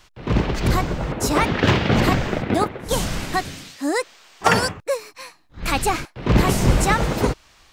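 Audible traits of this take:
background noise floor −55 dBFS
spectral slope −5.0 dB per octave

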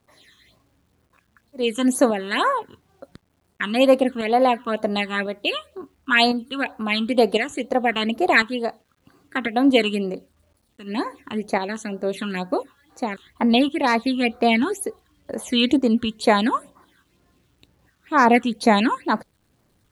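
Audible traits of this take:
tremolo saw up 0.95 Hz, depth 50%
phaser sweep stages 8, 2.1 Hz, lowest notch 630–3,200 Hz
a quantiser's noise floor 12 bits, dither none

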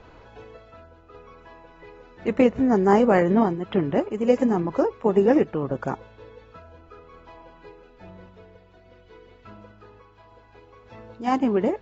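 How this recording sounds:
sample-and-hold tremolo
AAC

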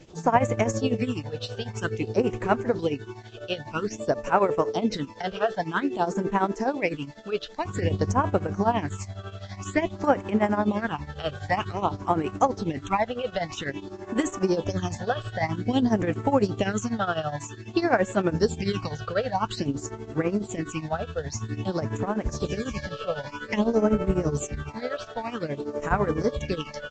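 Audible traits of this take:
phaser sweep stages 8, 0.51 Hz, lowest notch 270–4,900 Hz
a quantiser's noise floor 10 bits, dither triangular
tremolo triangle 12 Hz, depth 85%
Ogg Vorbis

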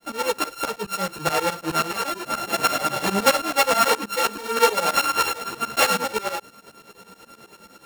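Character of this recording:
a buzz of ramps at a fixed pitch in blocks of 32 samples
tremolo saw up 9.4 Hz, depth 100%
a shimmering, thickened sound

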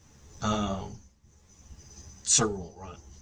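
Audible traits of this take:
a quantiser's noise floor 12 bits, dither none
tremolo triangle 0.63 Hz, depth 85%
a shimmering, thickened sound

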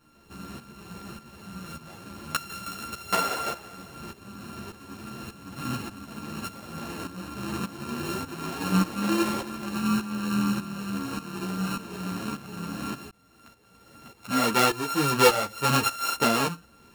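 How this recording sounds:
a buzz of ramps at a fixed pitch in blocks of 32 samples
tremolo saw up 1.7 Hz, depth 75%
a shimmering, thickened sound

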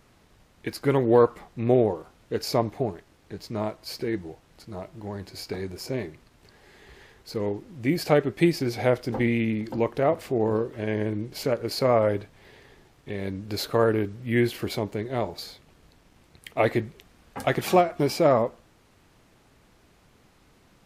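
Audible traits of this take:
background noise floor −60 dBFS
spectral slope −5.5 dB per octave

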